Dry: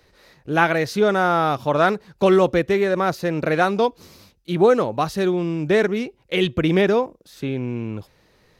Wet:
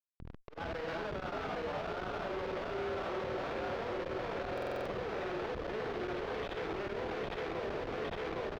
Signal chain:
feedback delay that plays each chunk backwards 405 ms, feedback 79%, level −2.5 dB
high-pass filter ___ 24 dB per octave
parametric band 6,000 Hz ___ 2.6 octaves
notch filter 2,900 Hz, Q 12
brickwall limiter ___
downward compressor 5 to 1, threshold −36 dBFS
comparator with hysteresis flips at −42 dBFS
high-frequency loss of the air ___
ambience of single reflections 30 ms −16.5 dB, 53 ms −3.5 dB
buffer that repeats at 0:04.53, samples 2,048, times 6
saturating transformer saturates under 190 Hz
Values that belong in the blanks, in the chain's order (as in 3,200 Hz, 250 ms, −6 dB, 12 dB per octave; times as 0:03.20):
440 Hz, +2 dB, −11 dBFS, 250 metres